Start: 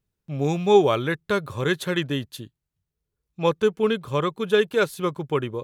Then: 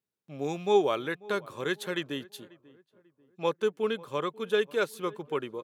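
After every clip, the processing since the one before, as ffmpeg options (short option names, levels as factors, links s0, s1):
-filter_complex "[0:a]highpass=240,asplit=2[s0][s1];[s1]adelay=541,lowpass=f=1300:p=1,volume=0.0891,asplit=2[s2][s3];[s3]adelay=541,lowpass=f=1300:p=1,volume=0.42,asplit=2[s4][s5];[s5]adelay=541,lowpass=f=1300:p=1,volume=0.42[s6];[s0][s2][s4][s6]amix=inputs=4:normalize=0,volume=0.473"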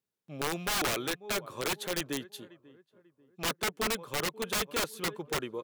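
-af "aeval=exprs='(mod(16.8*val(0)+1,2)-1)/16.8':c=same"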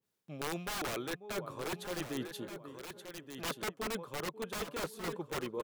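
-af "areverse,acompressor=threshold=0.00891:ratio=5,areverse,aecho=1:1:1176:0.335,adynamicequalizer=threshold=0.00126:dfrequency=1700:dqfactor=0.7:tfrequency=1700:tqfactor=0.7:attack=5:release=100:ratio=0.375:range=3:mode=cutabove:tftype=highshelf,volume=1.88"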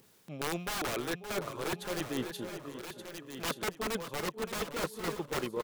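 -af "acompressor=mode=upward:threshold=0.00355:ratio=2.5,aecho=1:1:569|1138|1707:0.282|0.0676|0.0162,aeval=exprs='0.0501*(cos(1*acos(clip(val(0)/0.0501,-1,1)))-cos(1*PI/2))+0.00562*(cos(3*acos(clip(val(0)/0.0501,-1,1)))-cos(3*PI/2))':c=same,volume=1.88"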